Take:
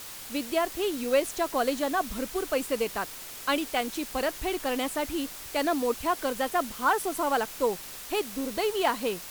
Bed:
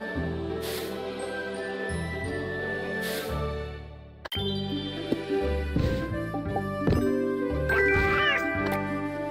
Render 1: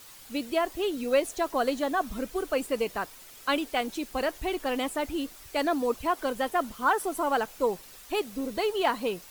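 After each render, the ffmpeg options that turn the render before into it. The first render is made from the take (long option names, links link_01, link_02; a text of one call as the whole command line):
ffmpeg -i in.wav -af "afftdn=noise_reduction=9:noise_floor=-42" out.wav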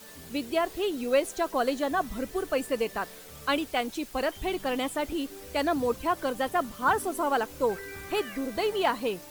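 ffmpeg -i in.wav -i bed.wav -filter_complex "[1:a]volume=-19dB[link_01];[0:a][link_01]amix=inputs=2:normalize=0" out.wav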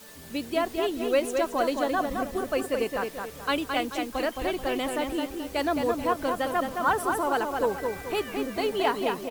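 ffmpeg -i in.wav -filter_complex "[0:a]asplit=2[link_01][link_02];[link_02]adelay=217,lowpass=frequency=3600:poles=1,volume=-4.5dB,asplit=2[link_03][link_04];[link_04]adelay=217,lowpass=frequency=3600:poles=1,volume=0.4,asplit=2[link_05][link_06];[link_06]adelay=217,lowpass=frequency=3600:poles=1,volume=0.4,asplit=2[link_07][link_08];[link_08]adelay=217,lowpass=frequency=3600:poles=1,volume=0.4,asplit=2[link_09][link_10];[link_10]adelay=217,lowpass=frequency=3600:poles=1,volume=0.4[link_11];[link_01][link_03][link_05][link_07][link_09][link_11]amix=inputs=6:normalize=0" out.wav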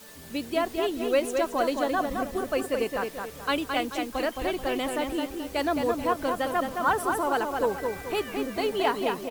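ffmpeg -i in.wav -af anull out.wav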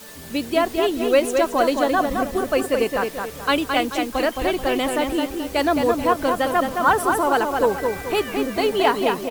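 ffmpeg -i in.wav -af "volume=7dB" out.wav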